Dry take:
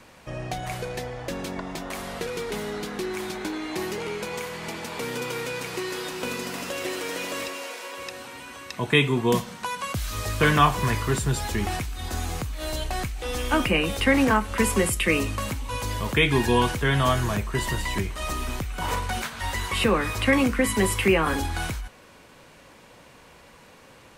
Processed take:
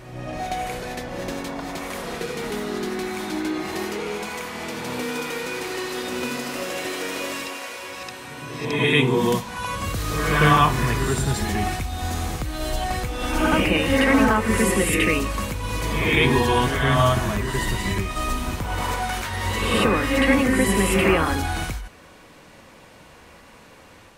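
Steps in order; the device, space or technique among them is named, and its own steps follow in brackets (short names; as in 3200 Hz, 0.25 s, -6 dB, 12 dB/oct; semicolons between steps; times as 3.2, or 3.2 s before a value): reverse reverb (reverse; reverb RT60 1.1 s, pre-delay 58 ms, DRR 0 dB; reverse)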